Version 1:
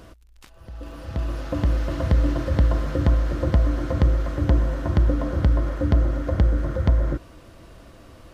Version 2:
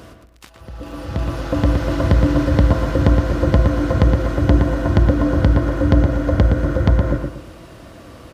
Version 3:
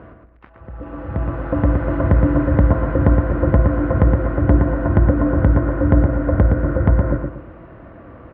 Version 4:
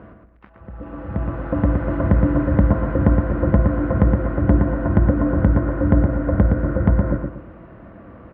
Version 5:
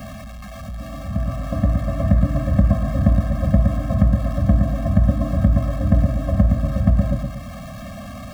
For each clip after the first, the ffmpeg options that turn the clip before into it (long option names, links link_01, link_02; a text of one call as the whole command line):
ffmpeg -i in.wav -filter_complex "[0:a]highpass=70,asplit=2[link_01][link_02];[link_02]adelay=117,lowpass=frequency=2600:poles=1,volume=-4.5dB,asplit=2[link_03][link_04];[link_04]adelay=117,lowpass=frequency=2600:poles=1,volume=0.34,asplit=2[link_05][link_06];[link_06]adelay=117,lowpass=frequency=2600:poles=1,volume=0.34,asplit=2[link_07][link_08];[link_08]adelay=117,lowpass=frequency=2600:poles=1,volume=0.34[link_09];[link_01][link_03][link_05][link_07][link_09]amix=inputs=5:normalize=0,volume=7dB" out.wav
ffmpeg -i in.wav -af "lowpass=frequency=1900:width=0.5412,lowpass=frequency=1900:width=1.3066" out.wav
ffmpeg -i in.wav -af "equalizer=frequency=200:width_type=o:width=0.33:gain=7.5,volume=-2.5dB" out.wav
ffmpeg -i in.wav -af "aeval=exprs='val(0)+0.5*0.0355*sgn(val(0))':channel_layout=same,afftfilt=real='re*eq(mod(floor(b*sr/1024/260),2),0)':imag='im*eq(mod(floor(b*sr/1024/260),2),0)':win_size=1024:overlap=0.75" out.wav